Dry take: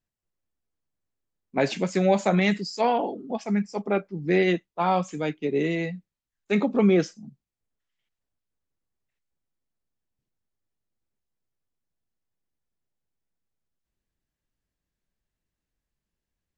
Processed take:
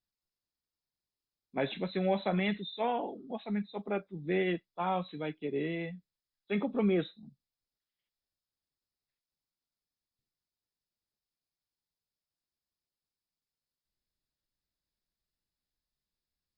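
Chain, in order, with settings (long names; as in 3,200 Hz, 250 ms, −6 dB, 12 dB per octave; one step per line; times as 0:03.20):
hearing-aid frequency compression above 3,300 Hz 4 to 1
tape wow and flutter 18 cents
level −9 dB
Opus 64 kbit/s 48,000 Hz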